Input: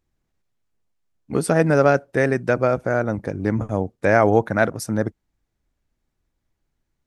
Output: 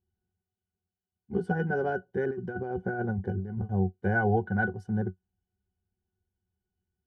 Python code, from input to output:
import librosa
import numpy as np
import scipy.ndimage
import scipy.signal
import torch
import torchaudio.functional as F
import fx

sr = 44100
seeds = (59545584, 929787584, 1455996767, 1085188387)

y = fx.octave_resonator(x, sr, note='F#', decay_s=0.1)
y = fx.over_compress(y, sr, threshold_db=-32.0, ratio=-0.5, at=(2.24, 3.59))
y = y * librosa.db_to_amplitude(1.5)